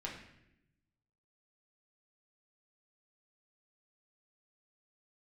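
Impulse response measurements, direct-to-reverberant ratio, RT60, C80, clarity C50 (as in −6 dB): −3.5 dB, 0.85 s, 8.0 dB, 5.0 dB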